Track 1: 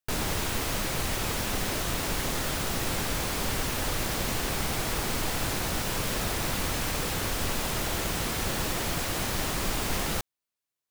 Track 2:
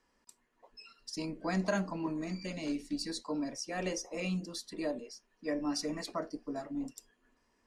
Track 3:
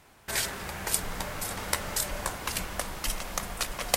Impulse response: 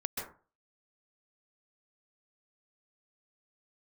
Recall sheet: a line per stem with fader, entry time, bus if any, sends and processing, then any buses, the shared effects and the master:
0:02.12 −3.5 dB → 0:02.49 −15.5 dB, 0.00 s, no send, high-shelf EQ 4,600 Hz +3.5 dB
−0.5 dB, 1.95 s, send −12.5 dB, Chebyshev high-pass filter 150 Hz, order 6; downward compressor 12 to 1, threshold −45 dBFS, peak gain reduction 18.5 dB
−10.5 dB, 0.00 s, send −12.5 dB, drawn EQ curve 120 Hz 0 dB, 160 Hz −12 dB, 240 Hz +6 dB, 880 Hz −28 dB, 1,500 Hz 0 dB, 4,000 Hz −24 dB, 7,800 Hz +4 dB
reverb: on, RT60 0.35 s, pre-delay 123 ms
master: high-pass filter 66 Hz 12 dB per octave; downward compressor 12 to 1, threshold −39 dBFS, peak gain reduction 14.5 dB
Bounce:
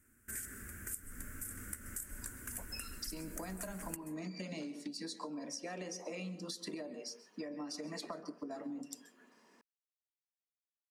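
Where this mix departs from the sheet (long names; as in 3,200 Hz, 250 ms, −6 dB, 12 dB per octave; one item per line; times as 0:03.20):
stem 1: muted
stem 2 −0.5 dB → +7.0 dB
master: missing high-pass filter 66 Hz 12 dB per octave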